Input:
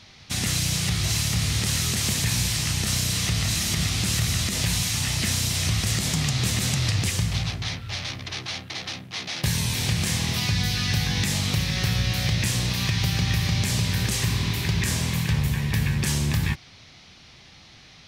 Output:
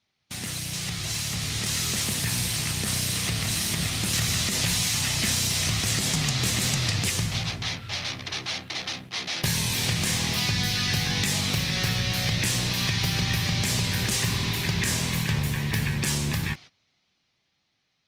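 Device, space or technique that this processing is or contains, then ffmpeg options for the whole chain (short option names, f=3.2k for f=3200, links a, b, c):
video call: -af "highpass=f=160:p=1,dynaudnorm=f=210:g=17:m=6.5dB,agate=range=-19dB:threshold=-38dB:ratio=16:detection=peak,volume=-5dB" -ar 48000 -c:a libopus -b:a 32k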